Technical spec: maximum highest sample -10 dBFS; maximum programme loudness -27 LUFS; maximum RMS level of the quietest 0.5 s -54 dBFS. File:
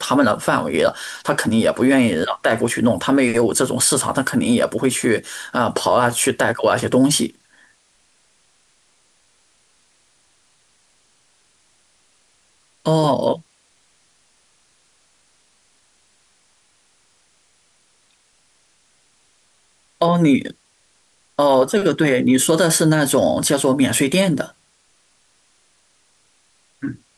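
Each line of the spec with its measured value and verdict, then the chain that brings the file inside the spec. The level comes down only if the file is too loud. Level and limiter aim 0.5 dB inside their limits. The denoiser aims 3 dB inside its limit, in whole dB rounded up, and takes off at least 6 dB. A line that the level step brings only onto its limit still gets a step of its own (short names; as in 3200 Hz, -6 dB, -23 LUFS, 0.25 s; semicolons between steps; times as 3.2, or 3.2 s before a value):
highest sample -5.5 dBFS: fail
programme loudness -17.5 LUFS: fail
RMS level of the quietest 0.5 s -60 dBFS: OK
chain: gain -10 dB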